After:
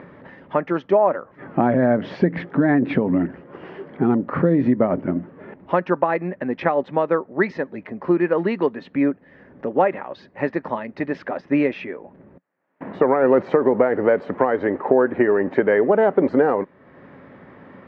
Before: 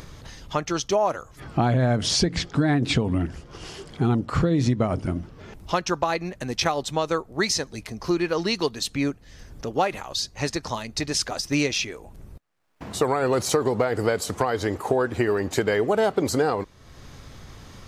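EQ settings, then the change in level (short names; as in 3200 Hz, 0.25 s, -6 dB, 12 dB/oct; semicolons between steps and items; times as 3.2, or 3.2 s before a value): speaker cabinet 180–2200 Hz, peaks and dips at 180 Hz +7 dB, 260 Hz +8 dB, 380 Hz +5 dB, 560 Hz +9 dB, 920 Hz +4 dB, 1800 Hz +6 dB; 0.0 dB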